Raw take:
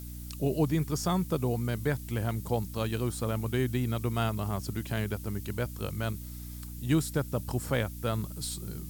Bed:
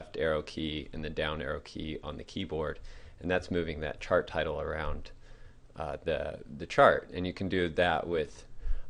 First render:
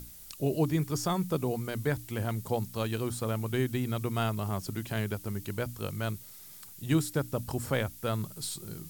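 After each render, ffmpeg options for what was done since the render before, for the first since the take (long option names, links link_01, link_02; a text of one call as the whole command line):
ffmpeg -i in.wav -af "bandreject=frequency=60:width_type=h:width=6,bandreject=frequency=120:width_type=h:width=6,bandreject=frequency=180:width_type=h:width=6,bandreject=frequency=240:width_type=h:width=6,bandreject=frequency=300:width_type=h:width=6" out.wav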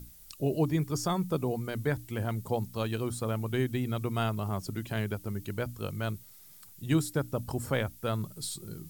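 ffmpeg -i in.wav -af "afftdn=noise_reduction=6:noise_floor=-49" out.wav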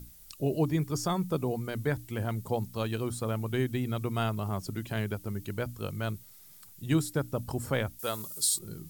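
ffmpeg -i in.wav -filter_complex "[0:a]asettb=1/sr,asplit=3[link_01][link_02][link_03];[link_01]atrim=end=7.994[link_04];[link_02]atrim=start=7.99:end=8.59,asetpts=PTS-STARTPTS,afade=type=in:duration=0.004:curve=qsin,afade=type=out:start_time=0.596:duration=0.004:curve=qsin,bass=frequency=250:gain=-12,treble=frequency=4000:gain=12[link_05];[link_03]atrim=start=8.586[link_06];[link_04][link_05]acrossfade=duration=0.004:curve1=hsin:curve2=qsin[link_07];[link_07][link_06]acrossfade=duration=0.004:curve1=qsin:curve2=hsin" out.wav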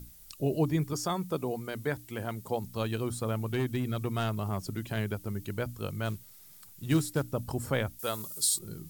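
ffmpeg -i in.wav -filter_complex "[0:a]asettb=1/sr,asplit=3[link_01][link_02][link_03];[link_01]atrim=end=0.934[link_04];[link_02]atrim=start=0.93:end=2.64,asetpts=PTS-STARTPTS,afade=type=in:duration=0.004:curve=qsin,afade=type=out:start_time=1.706:duration=0.004:curve=qsin,lowshelf=frequency=140:gain=-11[link_05];[link_03]atrim=start=2.636[link_06];[link_04][link_05]acrossfade=duration=0.004:curve1=hsin:curve2=qsin[link_07];[link_07][link_06]acrossfade=duration=0.004:curve1=qsin:curve2=hsin,asettb=1/sr,asplit=3[link_08][link_09][link_10];[link_08]atrim=end=3.434[link_11];[link_09]atrim=start=3.43:end=4.97,asetpts=PTS-STARTPTS,afade=type=in:duration=0.004:curve=qsin,afade=type=out:start_time=1.536:duration=0.004:curve=qsin,volume=24.5dB,asoftclip=hard,volume=-24.5dB[link_12];[link_10]atrim=start=4.966[link_13];[link_11][link_12]acrossfade=duration=0.004:curve1=hsin:curve2=qsin[link_14];[link_14][link_13]acrossfade=duration=0.004:curve1=qsin:curve2=hsin,asettb=1/sr,asplit=3[link_15][link_16][link_17];[link_15]atrim=end=6.054[link_18];[link_16]atrim=start=6.05:end=7.23,asetpts=PTS-STARTPTS,afade=type=in:duration=0.004:curve=qsin,afade=type=out:start_time=1.176:duration=0.004:curve=qsin,acrusher=bits=5:mode=log:mix=0:aa=0.000001[link_19];[link_17]atrim=start=7.226[link_20];[link_18][link_19]acrossfade=duration=0.004:curve1=hsin:curve2=qsin[link_21];[link_21][link_20]acrossfade=duration=0.004:curve1=qsin:curve2=hsin" out.wav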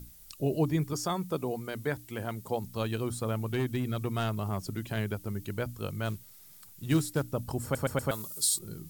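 ffmpeg -i in.wav -filter_complex "[0:a]asplit=5[link_01][link_02][link_03][link_04][link_05];[link_01]atrim=end=7.752[link_06];[link_02]atrim=start=7.628:end=7.752[link_07];[link_03]atrim=start=7.628:end=7.752[link_08];[link_04]atrim=start=7.628:end=7.752[link_09];[link_05]atrim=start=8.108[link_10];[link_06][link_07]acrossfade=duration=0.004:curve1=hsin:curve2=hsin[link_11];[link_11][link_08]acrossfade=duration=0.004:curve1=hsin:curve2=hsin[link_12];[link_12][link_09]acrossfade=duration=0.004:curve1=hsin:curve2=hsin[link_13];[link_13][link_10]acrossfade=duration=0.004:curve1=hsin:curve2=hsin" out.wav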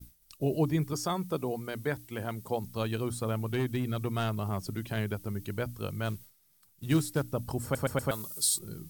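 ffmpeg -i in.wav -af "agate=range=-33dB:threshold=-43dB:ratio=3:detection=peak,bandreject=frequency=7100:width=18" out.wav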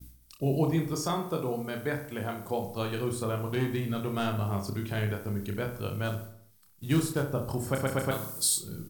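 ffmpeg -i in.wav -filter_complex "[0:a]asplit=2[link_01][link_02];[link_02]adelay=30,volume=-5dB[link_03];[link_01][link_03]amix=inputs=2:normalize=0,asplit=2[link_04][link_05];[link_05]adelay=65,lowpass=frequency=2800:poles=1,volume=-8.5dB,asplit=2[link_06][link_07];[link_07]adelay=65,lowpass=frequency=2800:poles=1,volume=0.54,asplit=2[link_08][link_09];[link_09]adelay=65,lowpass=frequency=2800:poles=1,volume=0.54,asplit=2[link_10][link_11];[link_11]adelay=65,lowpass=frequency=2800:poles=1,volume=0.54,asplit=2[link_12][link_13];[link_13]adelay=65,lowpass=frequency=2800:poles=1,volume=0.54,asplit=2[link_14][link_15];[link_15]adelay=65,lowpass=frequency=2800:poles=1,volume=0.54[link_16];[link_06][link_08][link_10][link_12][link_14][link_16]amix=inputs=6:normalize=0[link_17];[link_04][link_17]amix=inputs=2:normalize=0" out.wav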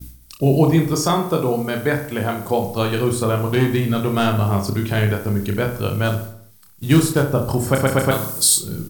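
ffmpeg -i in.wav -af "volume=12dB,alimiter=limit=-3dB:level=0:latency=1" out.wav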